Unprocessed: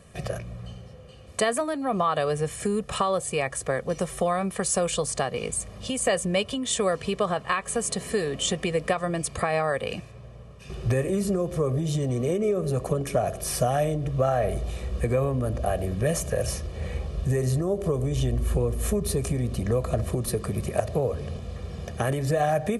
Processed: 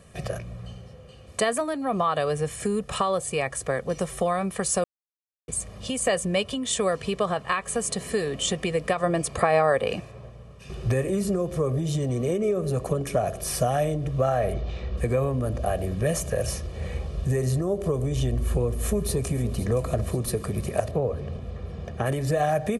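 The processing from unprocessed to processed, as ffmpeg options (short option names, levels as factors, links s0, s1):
-filter_complex "[0:a]asettb=1/sr,asplit=3[s0][s1][s2];[s0]atrim=end=8.994[s3];[s1]atrim=start=8.99:end=10.3,asetpts=PTS-STARTPTS,afade=t=in:d=0.004:c=qsin,afade=t=out:st=1.306:d=0.004:c=qsin,equalizer=f=600:t=o:w=2.8:g=5.5[s4];[s2]atrim=start=10.296[s5];[s3][s4]acrossfade=d=0.004:c1=hsin:c2=qsin[s6];[s6][s5]acrossfade=d=0.004:c1=qsin:c2=hsin,asplit=3[s7][s8][s9];[s7]afade=t=out:st=14.52:d=0.02[s10];[s8]lowpass=f=5000:w=0.5412,lowpass=f=5000:w=1.3066,afade=t=in:st=14.52:d=0.02,afade=t=out:st=14.96:d=0.02[s11];[s9]afade=t=in:st=14.96:d=0.02[s12];[s10][s11][s12]amix=inputs=3:normalize=0,asplit=2[s13][s14];[s14]afade=t=in:st=18.4:d=0.01,afade=t=out:st=19.37:d=0.01,aecho=0:1:520|1040|1560|2080|2600|3120|3640:0.188365|0.122437|0.0795842|0.0517297|0.0336243|0.0218558|0.0142063[s15];[s13][s15]amix=inputs=2:normalize=0,asettb=1/sr,asplit=3[s16][s17][s18];[s16]atrim=end=20.914[s19];[s17]atrim=start=20.91:end=22.06,asetpts=PTS-STARTPTS,afade=t=in:d=0.004:c=qsin,afade=t=out:st=1.146:d=0.004:c=qsin,aemphasis=mode=reproduction:type=75kf[s20];[s18]atrim=start=22.056[s21];[s19][s20]acrossfade=d=0.004:c1=hsin:c2=qsin[s22];[s22][s21]acrossfade=d=0.004:c1=qsin:c2=hsin,asplit=3[s23][s24][s25];[s23]atrim=end=4.84,asetpts=PTS-STARTPTS,afade=t=out:st=4.836:d=0.004:c=hsin[s26];[s24]atrim=start=4.84:end=5.48,asetpts=PTS-STARTPTS,volume=0[s27];[s25]atrim=start=5.48,asetpts=PTS-STARTPTS,afade=t=in:d=0.004:c=hsin[s28];[s26][s27][s28]concat=n=3:v=0:a=1"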